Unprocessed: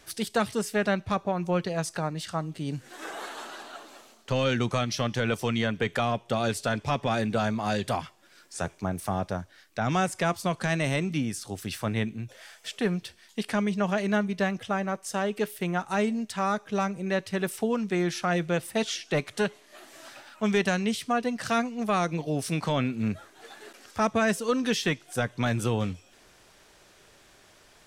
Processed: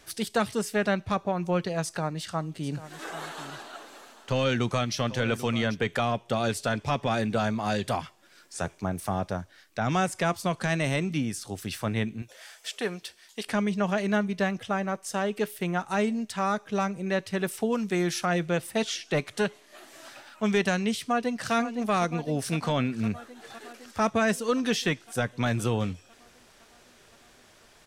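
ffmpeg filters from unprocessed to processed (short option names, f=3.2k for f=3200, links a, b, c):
-filter_complex "[0:a]asplit=3[a][b][c];[a]afade=t=out:st=2.62:d=0.02[d];[b]aecho=1:1:791:0.188,afade=t=in:st=2.62:d=0.02,afade=t=out:st=5.74:d=0.02[e];[c]afade=t=in:st=5.74:d=0.02[f];[d][e][f]amix=inputs=3:normalize=0,asettb=1/sr,asplit=3[g][h][i];[g]atrim=end=12.224[j];[h]atrim=start=12.22:end=13.47,asetpts=PTS-STARTPTS,afade=t=in:d=0.004:c=qsin,afade=t=out:st=1.246:d=0.004:c=qsin,bass=f=250:g=-14,treble=f=4k:g=3[k];[i]atrim=start=13.466[l];[j][k]acrossfade=d=0.004:c1=hsin:c2=qsin[m];[m][l]acrossfade=d=0.004:c1=qsin:c2=hsin,asettb=1/sr,asplit=3[n][o][p];[n]atrim=end=17.724[q];[o]atrim=start=17.72:end=18.26,asetpts=PTS-STARTPTS,afade=t=in:d=0.004:c=qsin,afade=t=out:st=0.536:d=0.004:c=qsin,highshelf=f=7.3k:g=10[r];[p]atrim=start=18.256[s];[q][r]acrossfade=d=0.004:c1=hsin:c2=qsin[t];[t][s]acrossfade=d=0.004:c1=qsin:c2=hsin,asplit=2[u][v];[v]afade=t=in:st=20.99:d=0.01,afade=t=out:st=21.54:d=0.01,aecho=0:1:510|1020|1530|2040|2550|3060|3570|4080|4590|5100|5610|6120:0.266073|0.199554|0.149666|0.112249|0.084187|0.0631403|0.0473552|0.0355164|0.0266373|0.019978|0.0149835|0.0112376[w];[u][w]amix=inputs=2:normalize=0"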